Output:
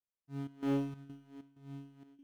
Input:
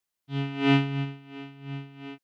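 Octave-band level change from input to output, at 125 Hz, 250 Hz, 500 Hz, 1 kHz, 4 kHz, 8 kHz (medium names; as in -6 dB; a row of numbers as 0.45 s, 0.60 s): -14.5 dB, -9.5 dB, -9.0 dB, -14.5 dB, -23.5 dB, no reading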